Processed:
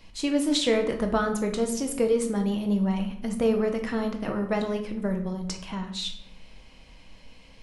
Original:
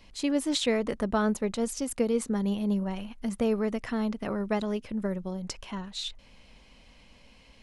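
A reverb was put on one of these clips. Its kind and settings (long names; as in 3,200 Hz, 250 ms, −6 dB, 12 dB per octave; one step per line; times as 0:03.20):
rectangular room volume 150 cubic metres, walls mixed, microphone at 0.6 metres
level +1.5 dB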